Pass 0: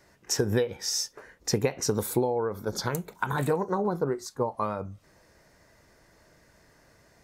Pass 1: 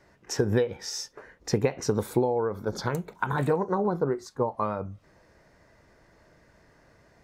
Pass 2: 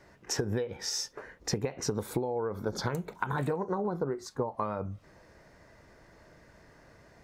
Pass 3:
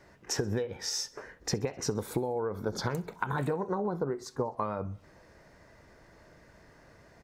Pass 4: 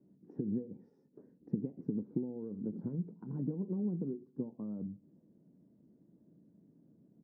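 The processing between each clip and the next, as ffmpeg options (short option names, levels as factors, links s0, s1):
-af "lowpass=f=2700:p=1,volume=1.19"
-af "acompressor=threshold=0.0316:ratio=6,volume=1.26"
-af "aecho=1:1:64|128|192|256:0.0668|0.0401|0.0241|0.0144"
-af "asuperpass=centerf=220:order=4:qfactor=1.6,volume=1.26"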